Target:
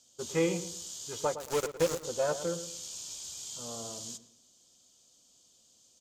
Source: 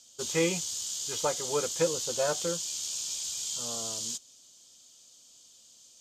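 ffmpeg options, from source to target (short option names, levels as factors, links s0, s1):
-filter_complex "[0:a]asplit=2[s0][s1];[s1]adynamicsmooth=sensitivity=1.5:basefreq=1400,volume=1.12[s2];[s0][s2]amix=inputs=2:normalize=0,asplit=3[s3][s4][s5];[s3]afade=t=out:st=1.34:d=0.02[s6];[s4]acrusher=bits=3:mix=0:aa=0.5,afade=t=in:st=1.34:d=0.02,afade=t=out:st=2.03:d=0.02[s7];[s5]afade=t=in:st=2.03:d=0.02[s8];[s6][s7][s8]amix=inputs=3:normalize=0,asplit=2[s9][s10];[s10]adelay=112,lowpass=f=1900:p=1,volume=0.282,asplit=2[s11][s12];[s12]adelay=112,lowpass=f=1900:p=1,volume=0.33,asplit=2[s13][s14];[s14]adelay=112,lowpass=f=1900:p=1,volume=0.33,asplit=2[s15][s16];[s16]adelay=112,lowpass=f=1900:p=1,volume=0.33[s17];[s9][s11][s13][s15][s17]amix=inputs=5:normalize=0,volume=0.447"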